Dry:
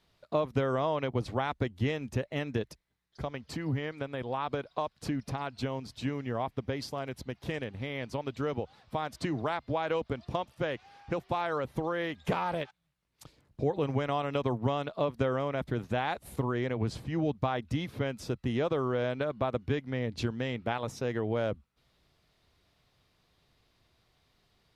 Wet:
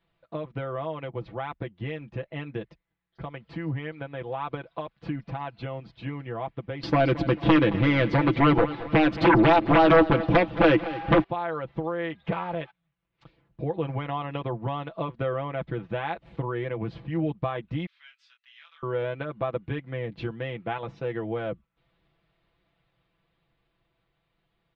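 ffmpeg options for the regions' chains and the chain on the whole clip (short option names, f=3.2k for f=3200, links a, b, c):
-filter_complex "[0:a]asettb=1/sr,asplit=3[a][b][c];[a]atrim=end=6.834[d];[b]atrim=start=6.83:end=11.24,asetpts=PTS-STARTPTS,afade=t=in:d=0.004:c=qsin,afade=t=out:st=4.406:d=0.004:c=qsin,equalizer=f=310:t=o:w=0.26:g=12.5,aeval=exprs='0.178*sin(PI/2*4.47*val(0)/0.178)':c=same,aecho=1:1:221|442|663|884:0.168|0.0755|0.034|0.0153,atrim=end_sample=194481[e];[c]atrim=start=11.236[f];[d][e]acrossfade=d=0.004:c1=hsin:c2=qsin[g];[g][f]acrossfade=d=0.004:c1=qsin:c2=hsin,asettb=1/sr,asplit=3[h][i][j];[h]atrim=end=17.864[k];[i]atrim=start=17.86:end=18.83,asetpts=PTS-STARTPTS,afade=t=in:d=0.004:c=qsin,afade=t=out:st=0.966:d=0.004:c=qsin,highpass=f=1.3k:w=0.5412,highpass=f=1.3k:w=1.3066,aderivative,asplit=2[l][m];[m]adelay=25,volume=-5dB[n];[l][n]amix=inputs=2:normalize=0,atrim=end_sample=42777[o];[j]atrim=start=18.826[p];[k][o]acrossfade=d=0.004:c1=hsin:c2=qsin[q];[q][p]acrossfade=d=0.004:c1=qsin:c2=hsin,lowpass=f=3.2k:w=0.5412,lowpass=f=3.2k:w=1.3066,aecho=1:1:6:0.76,dynaudnorm=f=490:g=11:m=4dB,volume=-5dB"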